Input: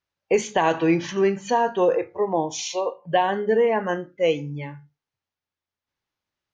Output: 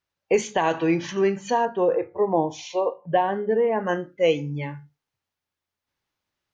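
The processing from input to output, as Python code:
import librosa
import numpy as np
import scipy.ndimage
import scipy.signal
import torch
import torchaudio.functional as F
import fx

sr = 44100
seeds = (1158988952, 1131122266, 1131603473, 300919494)

y = fx.lowpass(x, sr, hz=1200.0, slope=6, at=(1.65, 3.87))
y = fx.rider(y, sr, range_db=3, speed_s=0.5)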